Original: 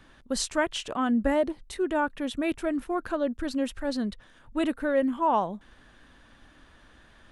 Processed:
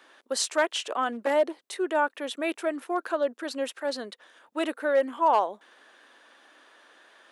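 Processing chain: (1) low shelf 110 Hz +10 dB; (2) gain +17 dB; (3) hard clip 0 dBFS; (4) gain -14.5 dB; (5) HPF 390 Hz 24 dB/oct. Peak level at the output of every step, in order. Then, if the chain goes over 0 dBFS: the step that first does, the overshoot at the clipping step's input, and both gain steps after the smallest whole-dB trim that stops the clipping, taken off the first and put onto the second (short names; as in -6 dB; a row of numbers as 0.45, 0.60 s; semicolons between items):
-8.0, +9.0, 0.0, -14.5, -11.0 dBFS; step 2, 9.0 dB; step 2 +8 dB, step 4 -5.5 dB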